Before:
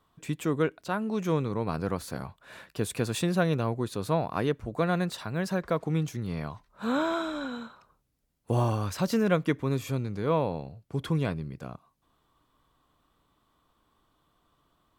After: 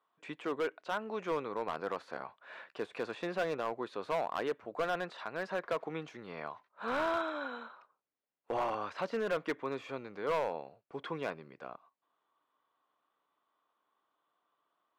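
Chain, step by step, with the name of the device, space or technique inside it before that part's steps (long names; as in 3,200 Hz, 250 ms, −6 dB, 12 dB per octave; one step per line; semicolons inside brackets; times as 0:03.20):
de-essing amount 95%
walkie-talkie (band-pass filter 520–2,600 Hz; hard clipping −27 dBFS, distortion −11 dB; noise gate −60 dBFS, range −7 dB)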